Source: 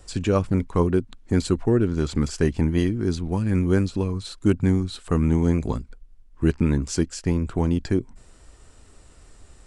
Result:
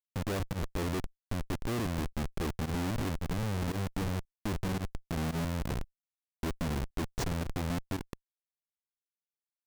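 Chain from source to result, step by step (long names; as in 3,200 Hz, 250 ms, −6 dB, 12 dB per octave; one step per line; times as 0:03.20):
multiband delay without the direct sound lows, highs 280 ms, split 1,100 Hz
comparator with hysteresis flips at −25 dBFS
fake sidechain pumping 113 BPM, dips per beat 1, −19 dB, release 64 ms
level −8 dB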